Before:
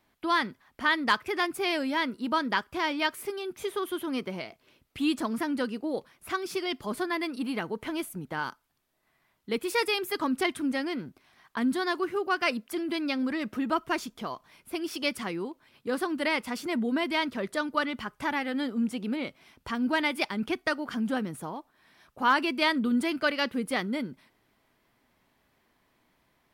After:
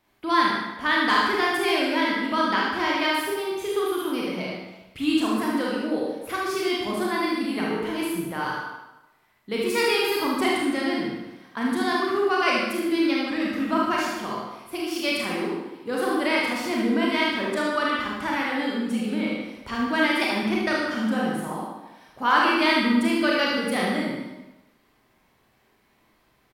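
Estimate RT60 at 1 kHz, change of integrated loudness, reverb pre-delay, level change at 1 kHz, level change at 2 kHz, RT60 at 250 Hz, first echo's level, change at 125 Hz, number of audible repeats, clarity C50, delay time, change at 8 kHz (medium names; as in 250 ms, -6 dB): 1.0 s, +5.5 dB, 27 ms, +6.0 dB, +5.5 dB, 0.90 s, -4.5 dB, +5.5 dB, 1, -1.5 dB, 75 ms, +5.0 dB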